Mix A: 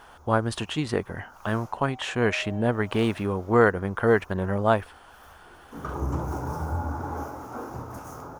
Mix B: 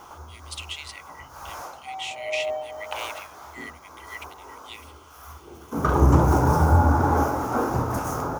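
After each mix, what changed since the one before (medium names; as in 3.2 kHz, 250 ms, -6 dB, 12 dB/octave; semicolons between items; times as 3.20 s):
speech: add brick-wall FIR high-pass 1.9 kHz; background +12.0 dB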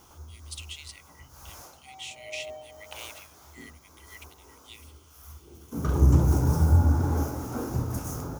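master: add peaking EQ 1 kHz -15 dB 2.9 oct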